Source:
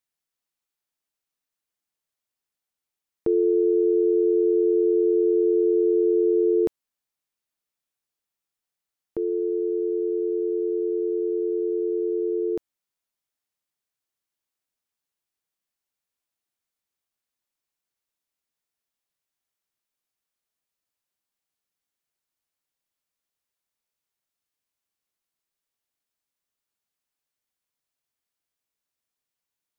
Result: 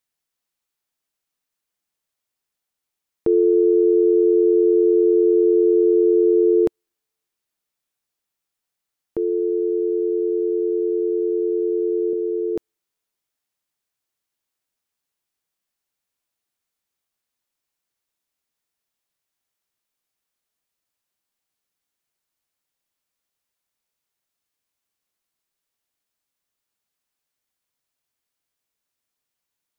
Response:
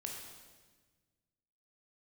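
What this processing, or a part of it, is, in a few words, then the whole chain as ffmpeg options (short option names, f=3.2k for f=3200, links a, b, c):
keyed gated reverb: -filter_complex "[0:a]asettb=1/sr,asplit=3[a][b][c];[a]atrim=end=12.134[d];[b]atrim=start=12.13:end=12.56,asetpts=PTS-STARTPTS,afade=t=in:d=0.004:c=qsin,afade=t=out:st=0.426:d=0.004:c=qsin,highpass=f=310:p=1[e];[c]atrim=start=12.556[f];[d][e]acrossfade=d=0.004:c1=hsin:c2=qsin[g];[g][f]acrossfade=d=0.004:c1=qsin:c2=hsin,asplit=3[h][i][j];[1:a]atrim=start_sample=2205[k];[i][k]afir=irnorm=-1:irlink=0[l];[j]apad=whole_len=1313668[m];[l][m]sidechaingate=range=-53dB:threshold=-17dB:ratio=16:detection=peak,volume=-6.5dB[n];[h][n]amix=inputs=2:normalize=0,volume=4dB"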